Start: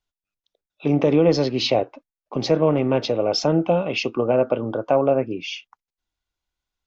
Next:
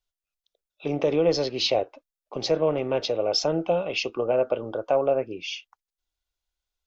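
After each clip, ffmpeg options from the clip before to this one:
-af "equalizer=f=125:t=o:w=1:g=-9,equalizer=f=250:t=o:w=1:g=-10,equalizer=f=1k:t=o:w=1:g=-5,equalizer=f=2k:t=o:w=1:g=-4"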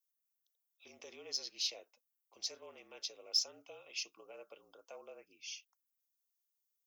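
-af "afreqshift=-46,aderivative,aexciter=amount=1.1:drive=9.6:freq=5.2k,volume=-8dB"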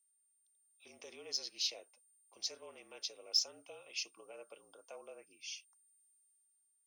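-af "aeval=exprs='val(0)+0.000355*sin(2*PI*9000*n/s)':c=same,dynaudnorm=f=130:g=11:m=5.5dB,volume=-5dB"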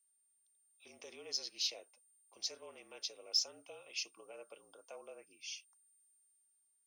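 -af "asoftclip=type=tanh:threshold=-20dB"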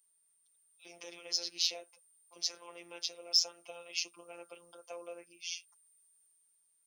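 -af "afftfilt=real='hypot(re,im)*cos(PI*b)':imag='0':win_size=1024:overlap=0.75,volume=8.5dB"

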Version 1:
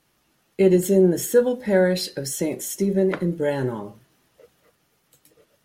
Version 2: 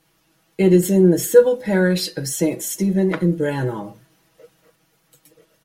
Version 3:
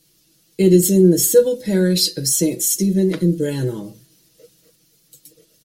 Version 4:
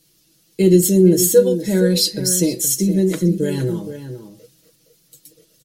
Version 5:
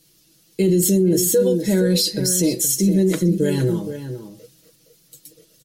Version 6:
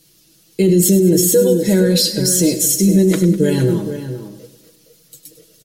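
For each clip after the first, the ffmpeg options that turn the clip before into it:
-af "aecho=1:1:6.2:0.76,volume=1.5dB"
-af "firequalizer=gain_entry='entry(410,0);entry(790,-14);entry(4300,7)':delay=0.05:min_phase=1,volume=1.5dB"
-filter_complex "[0:a]asplit=2[a][b];[b]adelay=466.5,volume=-10dB,highshelf=f=4k:g=-10.5[c];[a][c]amix=inputs=2:normalize=0"
-af "alimiter=limit=-11dB:level=0:latency=1:release=26,volume=1.5dB"
-af "aecho=1:1:101|202|303|404|505|606:0.211|0.12|0.0687|0.0391|0.0223|0.0127,volume=4dB"

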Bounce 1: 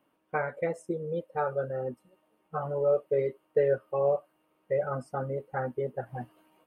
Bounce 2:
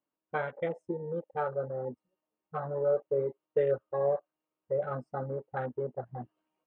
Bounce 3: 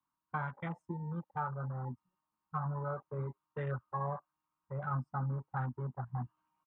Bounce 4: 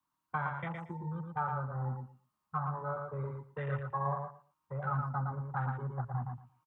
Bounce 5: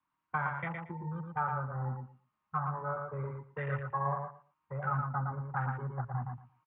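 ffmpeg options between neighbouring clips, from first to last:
-af "afwtdn=0.01,lowpass=5.7k,volume=-2.5dB"
-filter_complex "[0:a]firequalizer=gain_entry='entry(130,0);entry(490,-26);entry(980,4);entry(1900,-8);entry(3200,-10)':delay=0.05:min_phase=1,acrossover=split=140|320|690[a][b][c][d];[d]alimiter=level_in=12.5dB:limit=-24dB:level=0:latency=1:release=301,volume=-12.5dB[e];[a][b][c][e]amix=inputs=4:normalize=0,volume=6dB"
-filter_complex "[0:a]acrossover=split=170|440[a][b][c];[b]acompressor=threshold=-56dB:ratio=6[d];[a][d][c]amix=inputs=3:normalize=0,aecho=1:1:115|230|345:0.596|0.101|0.0172,volume=2.5dB"
-af "lowpass=f=2.3k:t=q:w=1.7"

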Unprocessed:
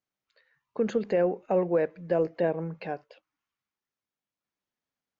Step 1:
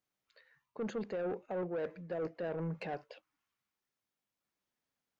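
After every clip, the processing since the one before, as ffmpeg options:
-af "areverse,acompressor=threshold=-31dB:ratio=16,areverse,asoftclip=type=tanh:threshold=-32.5dB,volume=1dB"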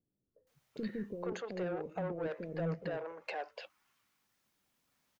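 -filter_complex "[0:a]acompressor=threshold=-50dB:ratio=2.5,acrossover=split=430[a][b];[b]adelay=470[c];[a][c]amix=inputs=2:normalize=0,volume=11.5dB"

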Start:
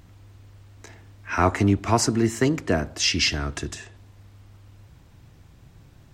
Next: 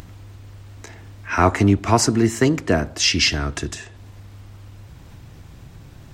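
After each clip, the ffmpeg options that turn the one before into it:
-af "acompressor=mode=upward:threshold=-38dB:ratio=2.5,volume=4dB"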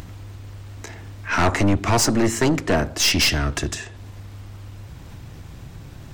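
-af "aeval=exprs='(tanh(7.94*val(0)+0.4)-tanh(0.4))/7.94':c=same,volume=4.5dB"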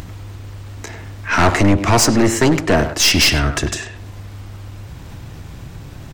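-filter_complex "[0:a]asplit=2[a][b];[b]adelay=100,highpass=300,lowpass=3.4k,asoftclip=type=hard:threshold=-19.5dB,volume=-8dB[c];[a][c]amix=inputs=2:normalize=0,volume=5dB"

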